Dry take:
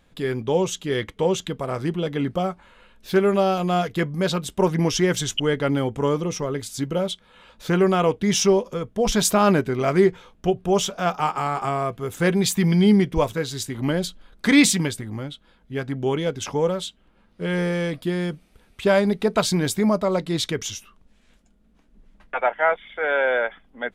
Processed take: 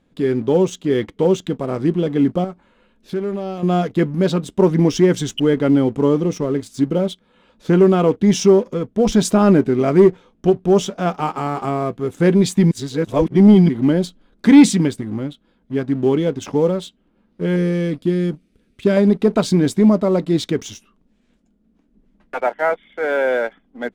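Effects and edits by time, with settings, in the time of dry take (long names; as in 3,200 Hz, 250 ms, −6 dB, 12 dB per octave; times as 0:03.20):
0:02.44–0:03.63: downward compressor 2.5 to 1, threshold −32 dBFS
0:12.71–0:13.69: reverse
0:17.56–0:18.97: parametric band 860 Hz −13.5 dB 0.82 octaves
whole clip: low-pass filter 10,000 Hz 12 dB per octave; parametric band 270 Hz +12.5 dB 1.9 octaves; leveller curve on the samples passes 1; level −6 dB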